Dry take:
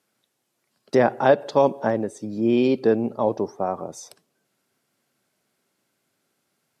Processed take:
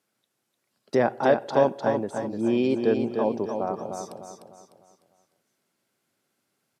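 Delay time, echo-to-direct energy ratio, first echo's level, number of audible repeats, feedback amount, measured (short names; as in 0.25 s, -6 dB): 0.301 s, -5.0 dB, -6.0 dB, 4, 40%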